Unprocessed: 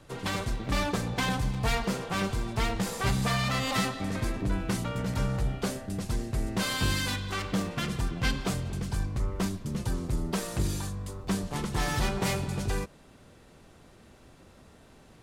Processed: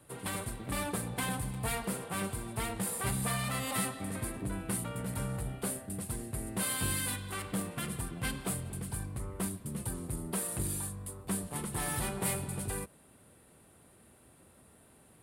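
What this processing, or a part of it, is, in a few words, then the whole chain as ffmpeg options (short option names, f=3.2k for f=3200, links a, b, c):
budget condenser microphone: -af "highpass=63,highshelf=f=7.6k:t=q:w=3:g=9,volume=-6dB"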